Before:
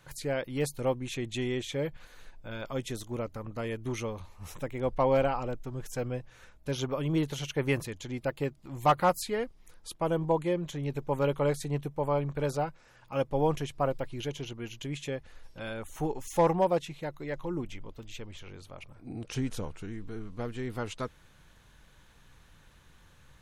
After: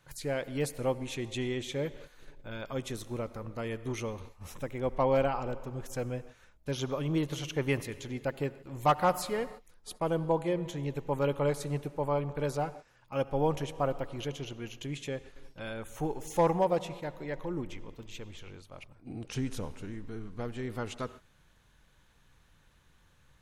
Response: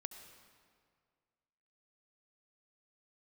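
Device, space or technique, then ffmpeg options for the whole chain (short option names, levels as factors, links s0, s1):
keyed gated reverb: -filter_complex "[0:a]asplit=3[s0][s1][s2];[1:a]atrim=start_sample=2205[s3];[s1][s3]afir=irnorm=-1:irlink=0[s4];[s2]apad=whole_len=1032696[s5];[s4][s5]sidechaingate=range=0.0224:threshold=0.00501:ratio=16:detection=peak,volume=1.12[s6];[s0][s6]amix=inputs=2:normalize=0,volume=0.501"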